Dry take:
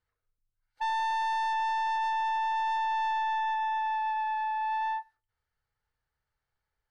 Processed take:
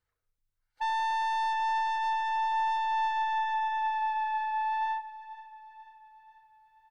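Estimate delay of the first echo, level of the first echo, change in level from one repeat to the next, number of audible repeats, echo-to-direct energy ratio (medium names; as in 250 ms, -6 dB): 487 ms, -16.5 dB, -5.5 dB, 4, -15.0 dB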